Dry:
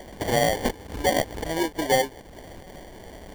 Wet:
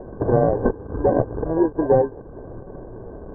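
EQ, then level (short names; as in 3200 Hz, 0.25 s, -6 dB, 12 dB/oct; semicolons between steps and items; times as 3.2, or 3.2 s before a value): rippled Chebyshev low-pass 1600 Hz, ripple 9 dB; tilt -1.5 dB/oct; bell 120 Hz +10.5 dB 0.31 oct; +8.0 dB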